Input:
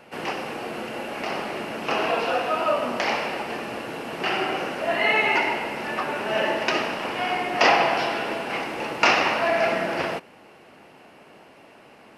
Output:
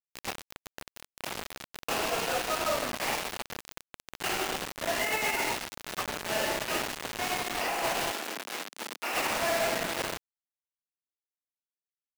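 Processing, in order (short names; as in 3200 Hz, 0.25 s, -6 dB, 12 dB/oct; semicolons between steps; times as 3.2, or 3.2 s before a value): soft clip -11 dBFS, distortion -20 dB; bit-crush 4-bit; 8.11–9.14 HPF 220 Hz 24 dB/oct; limiter -20 dBFS, peak gain reduction 12 dB; gain -4 dB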